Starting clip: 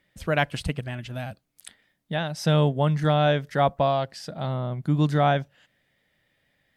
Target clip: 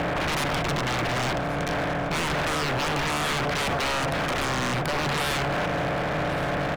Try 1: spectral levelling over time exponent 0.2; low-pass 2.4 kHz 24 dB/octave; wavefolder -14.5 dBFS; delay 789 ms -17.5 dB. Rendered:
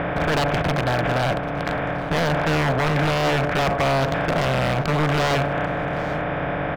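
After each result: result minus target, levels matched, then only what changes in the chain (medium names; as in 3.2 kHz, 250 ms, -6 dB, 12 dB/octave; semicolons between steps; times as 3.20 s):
wavefolder: distortion -10 dB; echo 332 ms early
change: wavefolder -21 dBFS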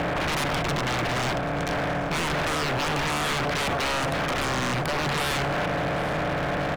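echo 332 ms early
change: delay 1121 ms -17.5 dB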